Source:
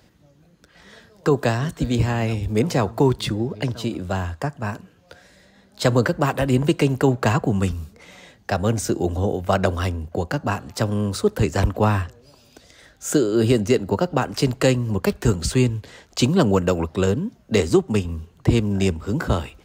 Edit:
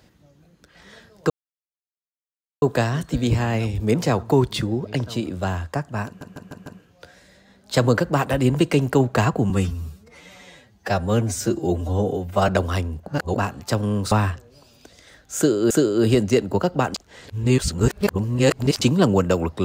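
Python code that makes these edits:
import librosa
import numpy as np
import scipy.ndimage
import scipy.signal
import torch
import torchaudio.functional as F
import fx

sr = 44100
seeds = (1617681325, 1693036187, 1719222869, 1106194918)

y = fx.edit(x, sr, fx.insert_silence(at_s=1.3, length_s=1.32),
    fx.stutter(start_s=4.74, slice_s=0.15, count=5),
    fx.stretch_span(start_s=7.58, length_s=1.99, factor=1.5),
    fx.reverse_span(start_s=10.15, length_s=0.3),
    fx.cut(start_s=11.2, length_s=0.63),
    fx.repeat(start_s=13.08, length_s=0.34, count=2),
    fx.reverse_span(start_s=14.32, length_s=1.87), tone=tone)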